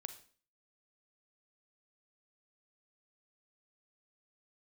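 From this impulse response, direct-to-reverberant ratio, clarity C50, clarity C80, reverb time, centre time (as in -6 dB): 9.0 dB, 11.5 dB, 15.5 dB, 0.45 s, 9 ms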